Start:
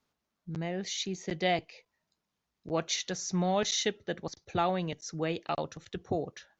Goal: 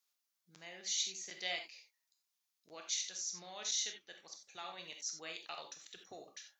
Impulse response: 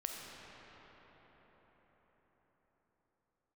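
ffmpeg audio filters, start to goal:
-filter_complex "[0:a]aderivative,asplit=3[link_01][link_02][link_03];[link_01]afade=type=out:start_time=2.73:duration=0.02[link_04];[link_02]flanger=delay=4.8:depth=7.3:regen=86:speed=1.3:shape=sinusoidal,afade=type=in:start_time=2.73:duration=0.02,afade=type=out:start_time=4.77:duration=0.02[link_05];[link_03]afade=type=in:start_time=4.77:duration=0.02[link_06];[link_04][link_05][link_06]amix=inputs=3:normalize=0[link_07];[1:a]atrim=start_sample=2205,afade=type=out:start_time=0.22:duration=0.01,atrim=end_sample=10143,asetrate=79380,aresample=44100[link_08];[link_07][link_08]afir=irnorm=-1:irlink=0,volume=10.5dB"

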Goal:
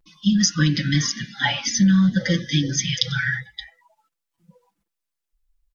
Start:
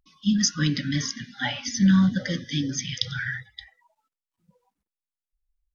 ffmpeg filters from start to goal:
ffmpeg -i in.wav -af "aecho=1:1:5.9:0.86,acompressor=threshold=-19dB:ratio=4,volume=4.5dB" out.wav

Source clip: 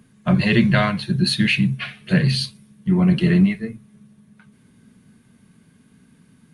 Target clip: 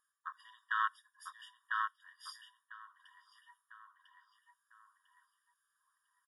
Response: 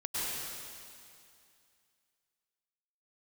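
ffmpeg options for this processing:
-filter_complex "[0:a]equalizer=frequency=2800:width_type=o:width=1.4:gain=-10,afwtdn=0.0562,asplit=2[link_01][link_02];[link_02]adelay=1041,lowpass=frequency=2700:poles=1,volume=-6.5dB,asplit=2[link_03][link_04];[link_04]adelay=1041,lowpass=frequency=2700:poles=1,volume=0.32,asplit=2[link_05][link_06];[link_06]adelay=1041,lowpass=frequency=2700:poles=1,volume=0.32,asplit=2[link_07][link_08];[link_08]adelay=1041,lowpass=frequency=2700:poles=1,volume=0.32[link_09];[link_01][link_03][link_05][link_07][link_09]amix=inputs=5:normalize=0,areverse,acompressor=threshold=-24dB:ratio=12,areverse,asetrate=45938,aresample=44100,afftfilt=real='re*eq(mod(floor(b*sr/1024/950),2),1)':imag='im*eq(mod(floor(b*sr/1024/950),2),1)':win_size=1024:overlap=0.75,volume=3.5dB"

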